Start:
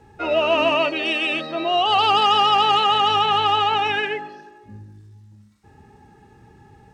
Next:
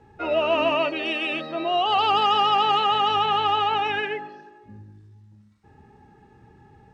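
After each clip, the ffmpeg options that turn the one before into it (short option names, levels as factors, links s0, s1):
-af "lowpass=f=3200:p=1,bandreject=f=50:t=h:w=6,bandreject=f=100:t=h:w=6,volume=0.75"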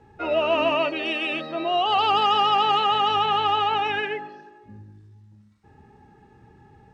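-af anull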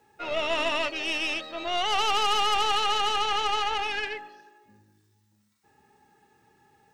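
-af "aemphasis=mode=production:type=riaa,aeval=exprs='0.316*(cos(1*acos(clip(val(0)/0.316,-1,1)))-cos(1*PI/2))+0.0631*(cos(4*acos(clip(val(0)/0.316,-1,1)))-cos(4*PI/2))':c=same,volume=0.501"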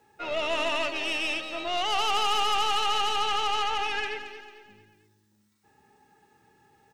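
-filter_complex "[0:a]asoftclip=type=tanh:threshold=0.141,asplit=2[s0][s1];[s1]aecho=0:1:223|446|669|892:0.282|0.11|0.0429|0.0167[s2];[s0][s2]amix=inputs=2:normalize=0"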